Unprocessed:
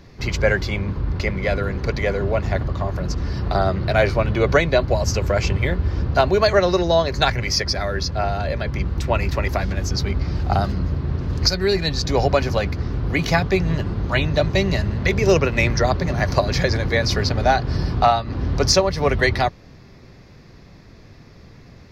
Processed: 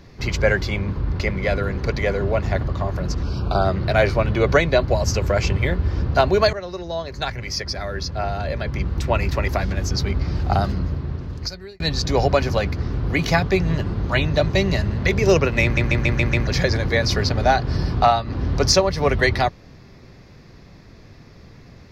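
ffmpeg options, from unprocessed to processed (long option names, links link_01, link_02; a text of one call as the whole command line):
ffmpeg -i in.wav -filter_complex "[0:a]asettb=1/sr,asplit=3[link_01][link_02][link_03];[link_01]atrim=end=3.234[link_04];[link_02]atrim=start=3.23:end=3.65,asetpts=PTS-STARTPTS,afade=type=in:duration=0.004:curve=qsin,afade=type=out:start_time=0.416:duration=0.004:curve=qsin,asuperstop=centerf=1900:order=20:qfactor=3.3[link_05];[link_03]atrim=start=3.646[link_06];[link_04][link_05]acrossfade=duration=0.004:curve1=hsin:curve2=qsin[link_07];[link_07][link_06]acrossfade=duration=0.004:curve1=qsin:curve2=hsin,asplit=9[link_08][link_09][link_10][link_11][link_12][link_13][link_14][link_15][link_16];[link_08]atrim=end=6.53,asetpts=PTS-STARTPTS,afade=type=out:start_time=6.526:duration=0.004:curve=hsin:silence=0.16788[link_17];[link_09]atrim=start=6.53:end=11.8,asetpts=PTS-STARTPTS,afade=type=in:duration=2.49:silence=0.16788,afade=type=out:start_time=4.18:duration=1.09[link_18];[link_10]atrim=start=11.8:end=15.772,asetpts=PTS-STARTPTS,afade=type=in:duration=0.004:curve=hsin[link_19];[link_11]atrim=start=15.628:end=15.772[link_20];[link_12]atrim=start=15.628:end=15.772[link_21];[link_13]atrim=start=15.628:end=15.772[link_22];[link_14]atrim=start=15.628:end=15.772[link_23];[link_15]atrim=start=15.628:end=15.772[link_24];[link_16]atrim=start=16.468[link_25];[link_17][link_18][link_19]concat=n=3:v=0:a=1[link_26];[link_26][link_20]acrossfade=duration=0.004:curve1=hsin:curve2=hsin[link_27];[link_27][link_21]acrossfade=duration=0.004:curve1=hsin:curve2=hsin[link_28];[link_28][link_22]acrossfade=duration=0.004:curve1=hsin:curve2=hsin[link_29];[link_29][link_23]acrossfade=duration=0.004:curve1=hsin:curve2=hsin[link_30];[link_30][link_24]acrossfade=duration=0.004:curve1=hsin:curve2=hsin[link_31];[link_31][link_25]acrossfade=duration=0.004:curve1=hsin:curve2=hsin" out.wav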